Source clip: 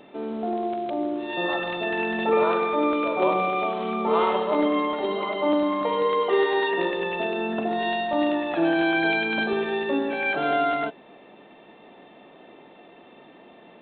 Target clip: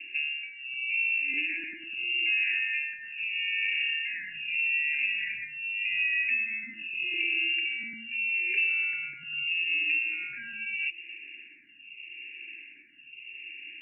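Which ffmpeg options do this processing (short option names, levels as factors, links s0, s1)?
-filter_complex "[0:a]equalizer=f=200:t=o:w=2:g=12,acompressor=threshold=0.0562:ratio=6,lowpass=f=2600:t=q:w=0.5098,lowpass=f=2600:t=q:w=0.6013,lowpass=f=2600:t=q:w=0.9,lowpass=f=2600:t=q:w=2.563,afreqshift=-3000,asuperstop=centerf=830:order=20:qfactor=0.72,asplit=2[s0][s1];[s1]afreqshift=-0.81[s2];[s0][s2]amix=inputs=2:normalize=1"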